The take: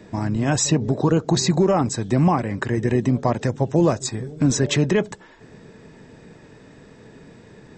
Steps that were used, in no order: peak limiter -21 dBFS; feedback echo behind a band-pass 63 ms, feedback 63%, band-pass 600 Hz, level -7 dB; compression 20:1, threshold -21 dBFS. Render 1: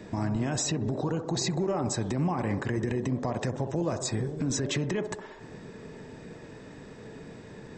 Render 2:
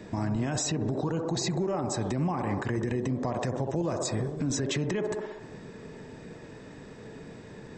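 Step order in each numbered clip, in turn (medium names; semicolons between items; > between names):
compression > peak limiter > feedback echo behind a band-pass; feedback echo behind a band-pass > compression > peak limiter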